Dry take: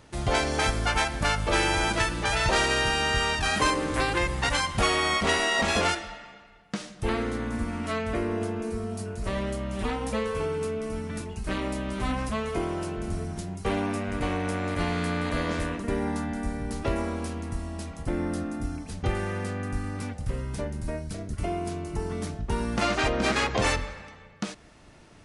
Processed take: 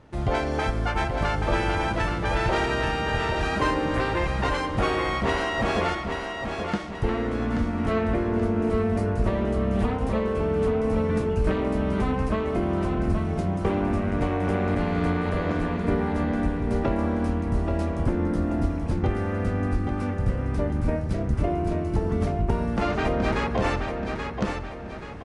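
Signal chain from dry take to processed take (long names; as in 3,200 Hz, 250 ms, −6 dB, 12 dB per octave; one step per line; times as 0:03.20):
camcorder AGC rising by 9.8 dB per second
0:18.35–0:18.87: floating-point word with a short mantissa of 4 bits
low-pass filter 1,200 Hz 6 dB per octave
repeating echo 830 ms, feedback 41%, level −5.5 dB
level +1.5 dB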